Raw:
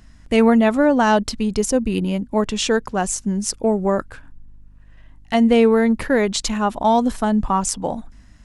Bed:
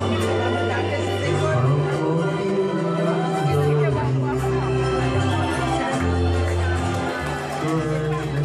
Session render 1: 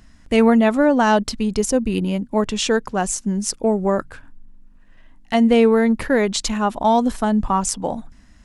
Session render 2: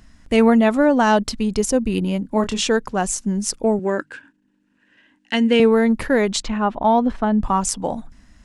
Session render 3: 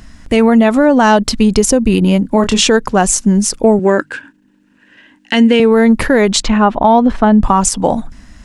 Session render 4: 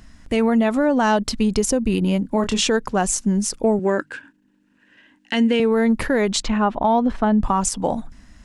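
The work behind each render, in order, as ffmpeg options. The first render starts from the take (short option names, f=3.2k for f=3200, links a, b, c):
-af "bandreject=f=50:t=h:w=4,bandreject=f=100:t=h:w=4,bandreject=f=150:t=h:w=4"
-filter_complex "[0:a]asettb=1/sr,asplit=3[a][b][c];[a]atrim=end=2.214[d];[b]atrim=start=2.21:end=2.64,asetpts=PTS-STARTPTS,afade=t=in:d=0.004:c=qsin,afade=t=out:st=0.426:d=0.004:c=qsin,asplit=2[e][f];[f]adelay=27,volume=-9dB[g];[e][g]amix=inputs=2:normalize=0,atrim=end_sample=18963[h];[c]atrim=start=2.636[i];[d][h]acrossfade=d=0.004:c1=hsin:c2=qsin[j];[j][i]acrossfade=d=0.004:c1=qsin:c2=hsin,asettb=1/sr,asplit=3[k][l][m];[k]atrim=end=3.794[n];[l]atrim=start=3.79:end=5.6,asetpts=PTS-STARTPTS,afade=t=in:d=0.004:c=qsin,afade=t=out:st=1.806:d=0.004:c=qsin,highpass=240,equalizer=f=300:t=q:w=4:g=6,equalizer=f=690:t=q:w=4:g=-10,equalizer=f=1.2k:t=q:w=4:g=-8,equalizer=f=1.6k:t=q:w=4:g=8,equalizer=f=2.8k:t=q:w=4:g=7,lowpass=f=9.1k:w=0.5412,lowpass=f=9.1k:w=1.3066[o];[m]atrim=start=5.596[p];[n][o]acrossfade=d=0.004:c1=hsin:c2=qsin[q];[q][p]acrossfade=d=0.004:c1=qsin:c2=hsin,asettb=1/sr,asplit=3[r][s][t];[r]atrim=end=6.424[u];[s]atrim=start=6.42:end=7.43,asetpts=PTS-STARTPTS,afade=t=in:d=0.004:c=qsin,afade=t=out:st=1.006:d=0.004:c=qsin,lowpass=2.6k[v];[t]atrim=start=7.426[w];[u][v]acrossfade=d=0.004:c1=hsin:c2=qsin[x];[x][w]acrossfade=d=0.004:c1=qsin:c2=hsin"
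-af "acompressor=threshold=-16dB:ratio=6,alimiter=level_in=11.5dB:limit=-1dB:release=50:level=0:latency=1"
-af "volume=-8.5dB"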